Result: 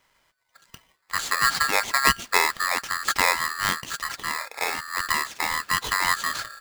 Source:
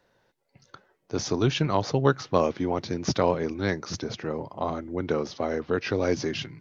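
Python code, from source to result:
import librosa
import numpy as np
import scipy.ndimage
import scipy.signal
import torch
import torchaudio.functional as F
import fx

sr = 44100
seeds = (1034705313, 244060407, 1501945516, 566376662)

y = x * np.sign(np.sin(2.0 * np.pi * 1500.0 * np.arange(len(x)) / sr))
y = y * librosa.db_to_amplitude(1.5)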